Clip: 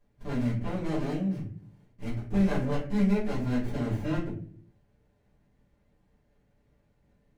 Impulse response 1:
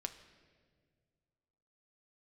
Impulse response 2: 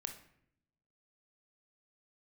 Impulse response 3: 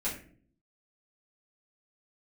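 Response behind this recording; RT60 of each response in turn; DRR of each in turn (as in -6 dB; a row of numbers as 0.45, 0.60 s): 3; 1.8, 0.70, 0.50 s; 7.0, 5.5, -9.5 dB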